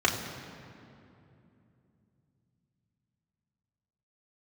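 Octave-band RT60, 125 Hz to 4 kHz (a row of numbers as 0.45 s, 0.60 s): 4.8 s, 4.1 s, 3.0 s, 2.5 s, 2.2 s, 1.7 s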